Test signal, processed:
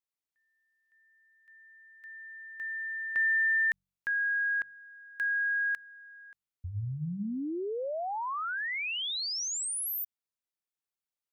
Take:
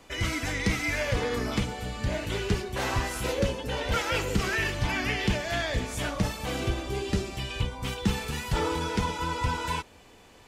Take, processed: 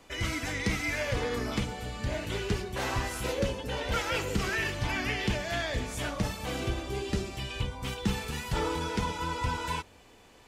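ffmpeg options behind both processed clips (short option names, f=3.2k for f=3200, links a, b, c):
-af "bandreject=f=46.78:t=h:w=4,bandreject=f=93.56:t=h:w=4,bandreject=f=140.34:t=h:w=4,bandreject=f=187.12:t=h:w=4,volume=-2.5dB"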